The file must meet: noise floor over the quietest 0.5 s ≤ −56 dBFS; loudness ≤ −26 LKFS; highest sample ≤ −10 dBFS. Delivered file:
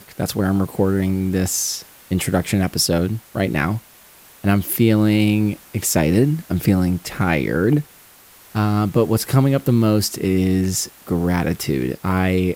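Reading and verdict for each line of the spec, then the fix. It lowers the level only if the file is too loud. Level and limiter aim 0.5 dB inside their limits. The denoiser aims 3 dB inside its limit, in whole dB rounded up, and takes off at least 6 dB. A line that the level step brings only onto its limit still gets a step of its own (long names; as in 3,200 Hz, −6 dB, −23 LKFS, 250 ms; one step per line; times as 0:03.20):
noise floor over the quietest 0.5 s −47 dBFS: out of spec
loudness −19.5 LKFS: out of spec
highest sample −4.5 dBFS: out of spec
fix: broadband denoise 6 dB, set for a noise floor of −47 dBFS
level −7 dB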